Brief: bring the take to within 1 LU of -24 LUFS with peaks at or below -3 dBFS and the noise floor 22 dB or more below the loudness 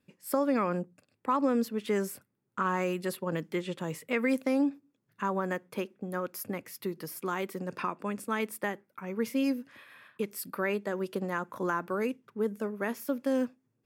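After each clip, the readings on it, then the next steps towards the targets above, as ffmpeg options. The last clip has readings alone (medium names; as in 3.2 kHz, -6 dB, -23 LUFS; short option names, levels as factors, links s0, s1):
loudness -32.5 LUFS; peak level -15.0 dBFS; loudness target -24.0 LUFS
-> -af "volume=2.66"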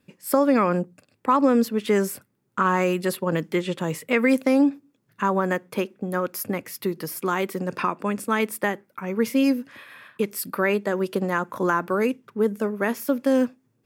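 loudness -24.0 LUFS; peak level -6.5 dBFS; noise floor -69 dBFS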